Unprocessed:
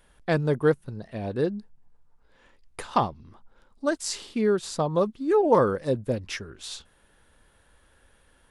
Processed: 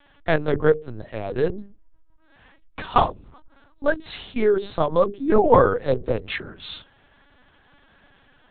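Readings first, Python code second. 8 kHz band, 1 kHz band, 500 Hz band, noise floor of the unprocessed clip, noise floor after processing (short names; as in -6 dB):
under -40 dB, +5.5 dB, +4.0 dB, -62 dBFS, -58 dBFS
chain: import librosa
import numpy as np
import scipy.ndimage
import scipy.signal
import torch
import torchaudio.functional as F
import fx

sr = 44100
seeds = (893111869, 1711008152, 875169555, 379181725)

y = fx.low_shelf(x, sr, hz=340.0, db=-4.0)
y = fx.hum_notches(y, sr, base_hz=50, count=10)
y = fx.lpc_vocoder(y, sr, seeds[0], excitation='pitch_kept', order=8)
y = F.gain(torch.from_numpy(y), 6.5).numpy()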